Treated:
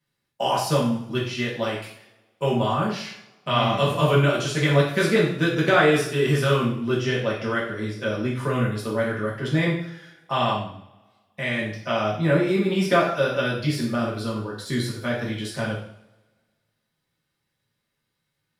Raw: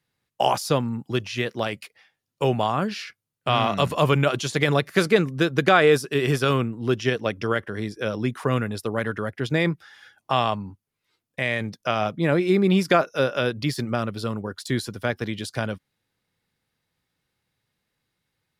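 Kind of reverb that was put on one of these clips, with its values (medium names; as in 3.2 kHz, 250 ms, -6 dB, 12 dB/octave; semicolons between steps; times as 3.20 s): two-slope reverb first 0.58 s, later 1.7 s, from -23 dB, DRR -6.5 dB; trim -7.5 dB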